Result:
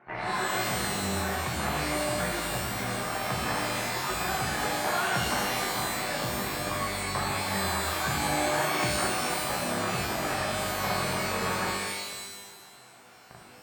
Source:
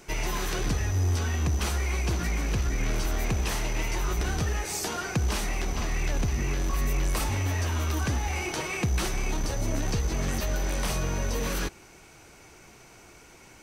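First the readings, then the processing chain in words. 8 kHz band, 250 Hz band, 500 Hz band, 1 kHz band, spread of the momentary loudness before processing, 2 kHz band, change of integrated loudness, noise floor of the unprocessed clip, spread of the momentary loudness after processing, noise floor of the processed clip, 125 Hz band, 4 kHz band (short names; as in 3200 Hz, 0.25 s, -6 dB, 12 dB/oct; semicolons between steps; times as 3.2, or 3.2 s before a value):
+1.0 dB, -0.5 dB, +3.5 dB, +7.0 dB, 3 LU, +4.5 dB, +0.5 dB, -52 dBFS, 4 LU, -51 dBFS, -8.0 dB, +4.5 dB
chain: in parallel at -3.5 dB: Schmitt trigger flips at -40 dBFS; on the sum: speaker cabinet 160–2000 Hz, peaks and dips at 190 Hz -4 dB, 310 Hz -8 dB, 450 Hz -5 dB, 740 Hz +8 dB, 1100 Hz +5 dB, 1700 Hz +6 dB; shimmer reverb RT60 1.2 s, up +12 st, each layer -2 dB, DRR 0 dB; gain -6 dB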